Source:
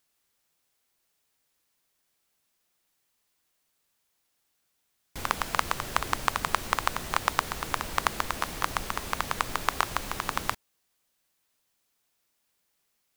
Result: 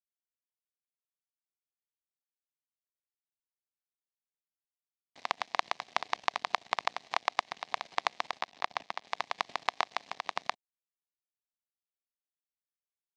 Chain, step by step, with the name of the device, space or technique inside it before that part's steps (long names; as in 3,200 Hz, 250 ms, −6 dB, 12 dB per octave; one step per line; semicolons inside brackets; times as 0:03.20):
0:08.39–0:09.08: high-shelf EQ 7,600 Hz −9.5 dB
blown loudspeaker (dead-zone distortion −33.5 dBFS; loudspeaker in its box 210–5,600 Hz, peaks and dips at 350 Hz −5 dB, 500 Hz −3 dB, 720 Hz +7 dB, 1,400 Hz −10 dB, 2,100 Hz +3 dB, 3,900 Hz +3 dB)
level −2.5 dB